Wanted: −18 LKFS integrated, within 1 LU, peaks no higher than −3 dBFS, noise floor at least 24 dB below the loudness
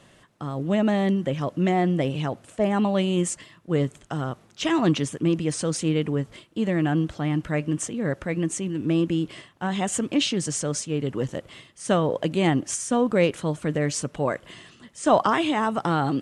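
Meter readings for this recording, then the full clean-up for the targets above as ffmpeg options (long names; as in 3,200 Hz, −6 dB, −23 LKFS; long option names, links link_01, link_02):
integrated loudness −25.0 LKFS; sample peak −6.5 dBFS; target loudness −18.0 LKFS
→ -af "volume=7dB,alimiter=limit=-3dB:level=0:latency=1"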